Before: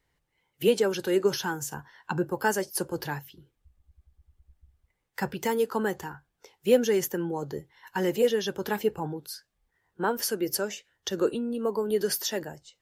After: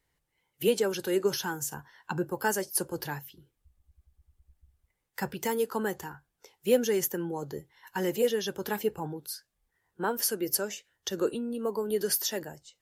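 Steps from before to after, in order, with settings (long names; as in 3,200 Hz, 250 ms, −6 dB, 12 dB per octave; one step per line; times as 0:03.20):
parametric band 12,000 Hz +6.5 dB 1.4 octaves
level −3 dB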